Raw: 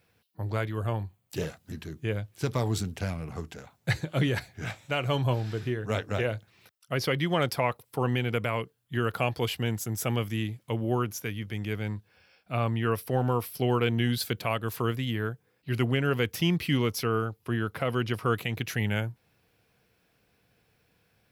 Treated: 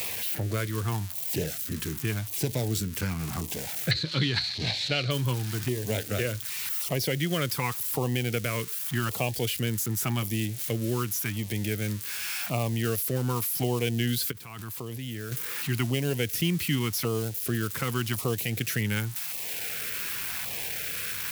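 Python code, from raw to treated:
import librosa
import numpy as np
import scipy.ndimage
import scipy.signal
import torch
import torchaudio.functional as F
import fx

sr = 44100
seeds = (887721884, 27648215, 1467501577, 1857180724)

y = x + 0.5 * 10.0 ** (-26.5 / 20.0) * np.diff(np.sign(x), prepend=np.sign(x[:1]))
y = fx.lowpass_res(y, sr, hz=4200.0, q=9.1, at=(3.91, 5.11))
y = fx.level_steps(y, sr, step_db=23, at=(14.3, 15.31), fade=0.02)
y = fx.filter_lfo_notch(y, sr, shape='saw_down', hz=0.88, low_hz=430.0, high_hz=1600.0, q=1.2)
y = fx.band_squash(y, sr, depth_pct=70)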